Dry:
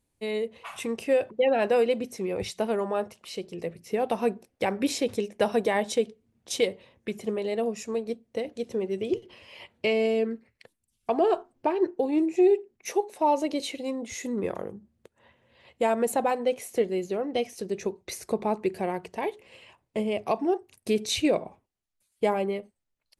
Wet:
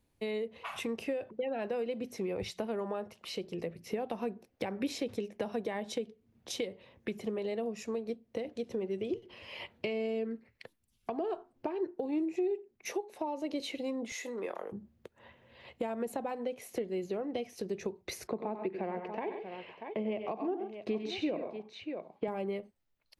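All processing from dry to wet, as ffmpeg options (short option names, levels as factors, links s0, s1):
-filter_complex "[0:a]asettb=1/sr,asplit=3[s0][s1][s2];[s0]atrim=end=14.124[s3];[s1]atrim=start=14.12:end=14.72,asetpts=PTS-STARTPTS,afade=t=in:d=0.004:c=qsin,afade=t=out:st=0.596:d=0.004:c=qsin,highpass=530,asplit=2[s4][s5];[s5]adelay=26,volume=0.237[s6];[s4][s6]amix=inputs=2:normalize=0,atrim=end_sample=26460[s7];[s2]atrim=start=14.716[s8];[s3][s7]acrossfade=d=0.004:c1=hsin:c2=qsin[s9];[s9][s8]acrossfade=d=0.004:c1=qsin:c2=hsin,asettb=1/sr,asplit=3[s10][s11][s12];[s10]atrim=end=18.274[s13];[s11]atrim=start=18.27:end=22.28,asetpts=PTS-STARTPTS,afade=t=in:d=0.004:c=qsin,afade=t=out:st=4.006:d=0.004:c=qsin,highpass=170,lowpass=2700,aecho=1:1:78|93|134|637:0.112|0.335|0.224|0.168,atrim=end_sample=176841[s14];[s12]atrim=start=22.276[s15];[s13][s14]acrossfade=d=0.004:c1=hsin:c2=qsin[s16];[s16][s15]acrossfade=d=0.004:c1=qsin:c2=hsin,acompressor=threshold=0.00891:ratio=2,equalizer=f=8600:t=o:w=0.94:g=-9,acrossover=split=330[s17][s18];[s18]acompressor=threshold=0.0141:ratio=6[s19];[s17][s19]amix=inputs=2:normalize=0,volume=1.41"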